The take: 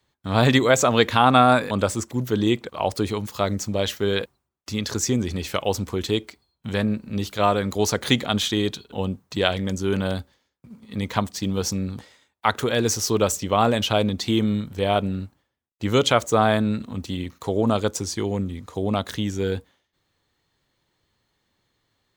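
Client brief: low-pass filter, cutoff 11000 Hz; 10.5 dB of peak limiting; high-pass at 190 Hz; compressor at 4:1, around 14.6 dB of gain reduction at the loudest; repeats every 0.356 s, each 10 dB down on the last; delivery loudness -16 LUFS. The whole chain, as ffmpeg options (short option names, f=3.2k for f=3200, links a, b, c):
-af "highpass=190,lowpass=11k,acompressor=threshold=-29dB:ratio=4,alimiter=limit=-21.5dB:level=0:latency=1,aecho=1:1:356|712|1068|1424:0.316|0.101|0.0324|0.0104,volume=18dB"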